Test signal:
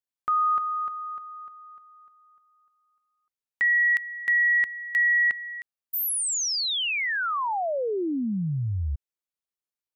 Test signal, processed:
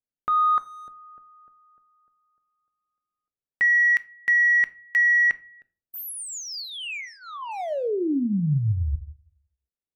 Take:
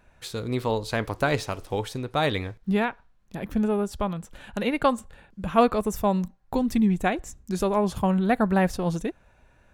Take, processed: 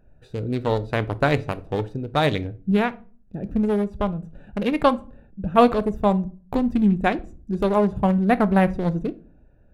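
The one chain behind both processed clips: local Wiener filter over 41 samples; simulated room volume 250 m³, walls furnished, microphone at 0.39 m; trim +4 dB

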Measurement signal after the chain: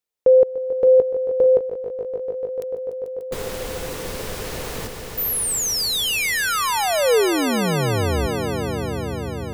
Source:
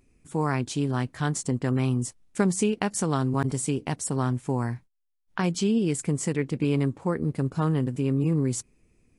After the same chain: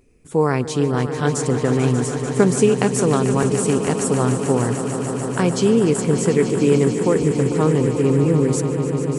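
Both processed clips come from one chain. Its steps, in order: peaking EQ 460 Hz +8.5 dB 0.57 oct; on a send: echo with a slow build-up 147 ms, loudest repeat 5, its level -12 dB; on the sum: trim +5 dB

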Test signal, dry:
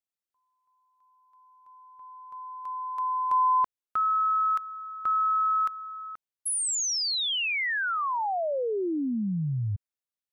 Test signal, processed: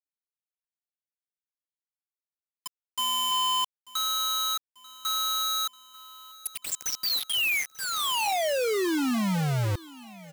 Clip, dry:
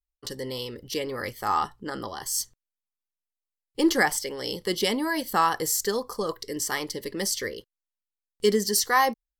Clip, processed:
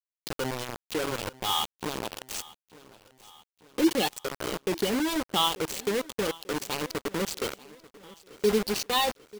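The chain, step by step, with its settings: median filter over 25 samples; resonant high shelf 2 kHz +9.5 dB, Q 1.5; in parallel at +1.5 dB: compression 12:1, threshold -37 dBFS; on the sum: spectral gate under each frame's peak -15 dB strong; feedback comb 63 Hz, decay 0.37 s, harmonics all, mix 30%; bit crusher 5-bit; on a send: feedback delay 890 ms, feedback 56%, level -21 dB

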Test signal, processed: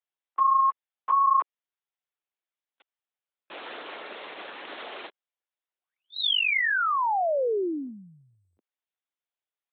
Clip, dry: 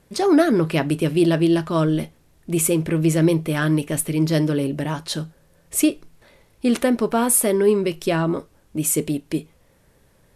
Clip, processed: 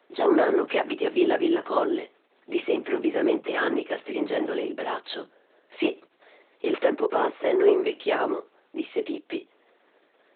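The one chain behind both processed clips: low-pass that closes with the level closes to 2.8 kHz, closed at -14.5 dBFS; LPC vocoder at 8 kHz whisper; high-pass 350 Hz 24 dB/octave

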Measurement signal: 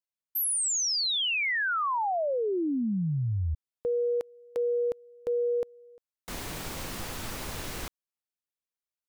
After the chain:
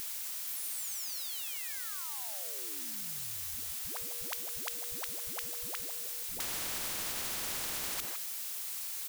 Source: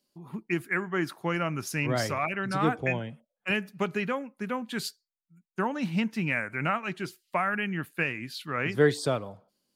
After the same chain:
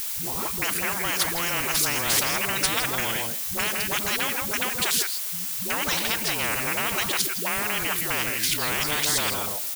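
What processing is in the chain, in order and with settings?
level held to a coarse grid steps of 11 dB; phase dispersion highs, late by 123 ms, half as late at 310 Hz; added noise blue -58 dBFS; delay 162 ms -17.5 dB; spectrum-flattening compressor 10:1; trim +7 dB

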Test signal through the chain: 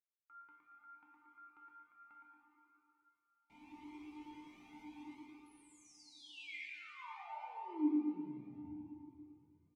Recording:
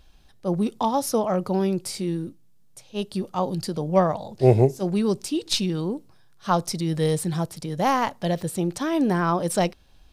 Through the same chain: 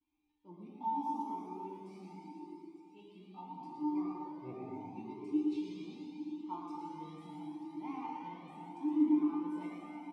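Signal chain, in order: gate with hold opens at -45 dBFS; vowel filter u; feedback comb 300 Hz, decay 0.52 s, harmonics all, mix 90%; feedback delay 114 ms, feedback 45%, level -4.5 dB; plate-style reverb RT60 3.4 s, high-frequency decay 0.95×, DRR -3 dB; Shepard-style flanger rising 0.77 Hz; trim +7.5 dB

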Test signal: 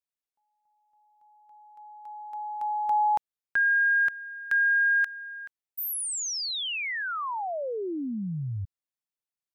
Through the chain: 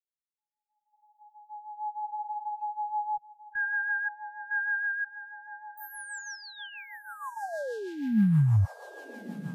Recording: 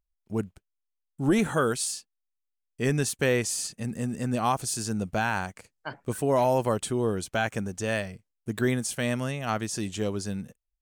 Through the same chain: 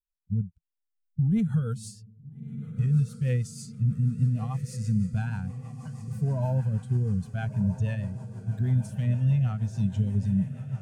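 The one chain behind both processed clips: expander on every frequency bin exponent 1.5; recorder AGC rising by 31 dB/s, up to +33 dB; resonant low shelf 230 Hz +11.5 dB, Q 3; harmonic-percussive split percussive -15 dB; peak limiter -13 dBFS; echo that smears into a reverb 1353 ms, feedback 62%, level -12 dB; rotary cabinet horn 6.3 Hz; trim -4 dB

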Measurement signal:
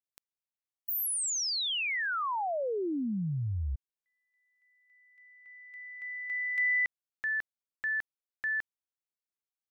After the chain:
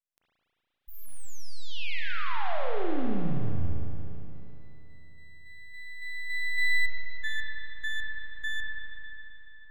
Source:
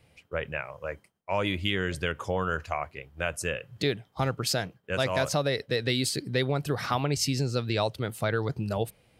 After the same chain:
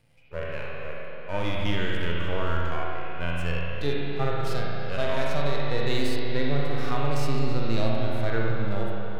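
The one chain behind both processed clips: partial rectifier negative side -12 dB; spring tank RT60 3.4 s, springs 35/58 ms, chirp 50 ms, DRR -1 dB; harmonic-percussive split percussive -18 dB; trim +3 dB

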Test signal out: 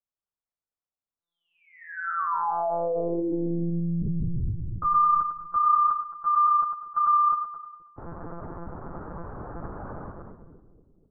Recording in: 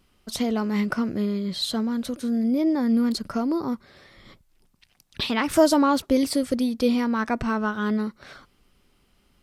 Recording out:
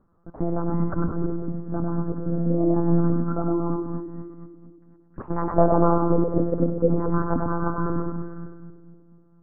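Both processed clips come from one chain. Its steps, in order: steep low-pass 1.4 kHz 48 dB/octave; on a send: two-band feedback delay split 430 Hz, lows 238 ms, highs 106 ms, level -4 dB; on the sum: monotone LPC vocoder at 8 kHz 170 Hz

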